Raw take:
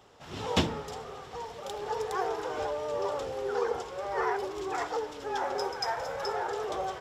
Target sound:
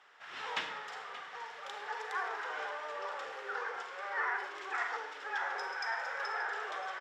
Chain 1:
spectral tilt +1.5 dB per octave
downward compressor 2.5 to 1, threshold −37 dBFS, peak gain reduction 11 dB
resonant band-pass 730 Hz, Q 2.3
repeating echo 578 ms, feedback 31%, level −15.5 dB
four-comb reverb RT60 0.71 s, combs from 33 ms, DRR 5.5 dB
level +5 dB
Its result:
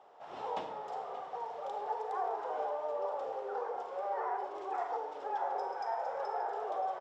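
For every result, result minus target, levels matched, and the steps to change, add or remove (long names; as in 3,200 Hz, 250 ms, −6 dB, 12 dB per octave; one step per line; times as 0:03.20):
2,000 Hz band −15.5 dB; downward compressor: peak gain reduction +4 dB
change: resonant band-pass 1,700 Hz, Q 2.3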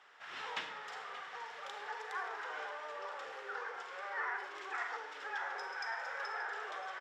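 downward compressor: peak gain reduction +4 dB
change: downward compressor 2.5 to 1, threshold −30 dBFS, peak gain reduction 6.5 dB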